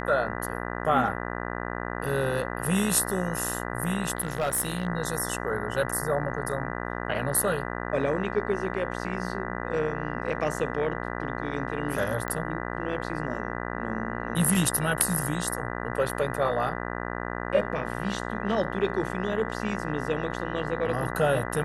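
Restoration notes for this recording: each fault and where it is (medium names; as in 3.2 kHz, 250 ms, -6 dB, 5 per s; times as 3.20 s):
buzz 60 Hz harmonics 33 -33 dBFS
4.17–4.87 s: clipped -22 dBFS
12.28 s: pop -17 dBFS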